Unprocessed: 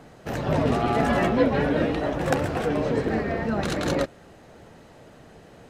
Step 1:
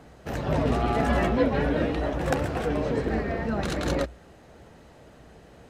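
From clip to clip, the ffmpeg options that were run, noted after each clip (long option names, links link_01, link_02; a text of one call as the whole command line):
ffmpeg -i in.wav -af "equalizer=frequency=61:width_type=o:width=0.32:gain=14,volume=-2.5dB" out.wav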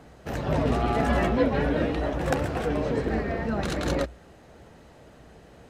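ffmpeg -i in.wav -af anull out.wav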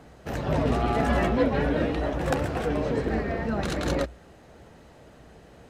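ffmpeg -i in.wav -af "aeval=exprs='clip(val(0),-1,0.178)':channel_layout=same" out.wav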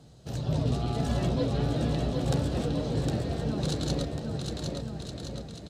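ffmpeg -i in.wav -af "equalizer=frequency=125:width_type=o:width=1:gain=12,equalizer=frequency=1000:width_type=o:width=1:gain=-3,equalizer=frequency=2000:width_type=o:width=1:gain=-10,equalizer=frequency=4000:width_type=o:width=1:gain=11,equalizer=frequency=8000:width_type=o:width=1:gain=7,aecho=1:1:760|1368|1854|2244|2555:0.631|0.398|0.251|0.158|0.1,volume=-8dB" out.wav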